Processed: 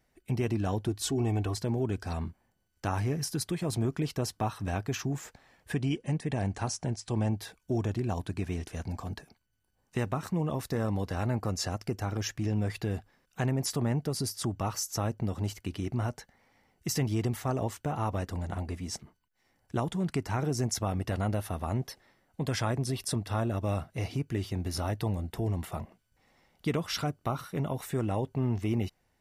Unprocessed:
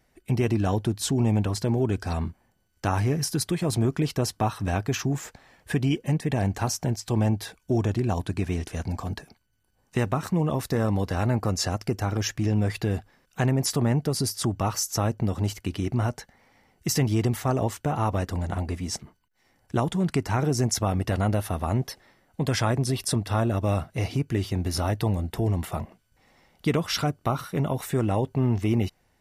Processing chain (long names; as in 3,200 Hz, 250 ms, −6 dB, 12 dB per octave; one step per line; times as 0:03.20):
0:00.88–0:01.57: comb filter 2.7 ms, depth 65%
0:05.73–0:07.33: linear-phase brick-wall low-pass 11,000 Hz
level −6 dB